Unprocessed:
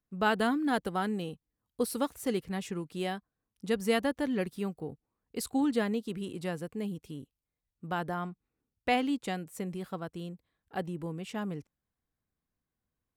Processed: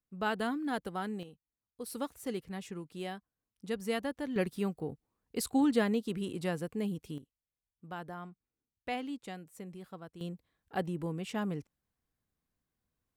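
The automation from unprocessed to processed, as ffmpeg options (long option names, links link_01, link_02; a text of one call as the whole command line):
ffmpeg -i in.wav -af "asetnsamples=nb_out_samples=441:pad=0,asendcmd='1.23 volume volume -13dB;1.86 volume volume -6dB;4.36 volume volume 1dB;7.18 volume volume -9dB;10.21 volume volume 1dB',volume=-5.5dB" out.wav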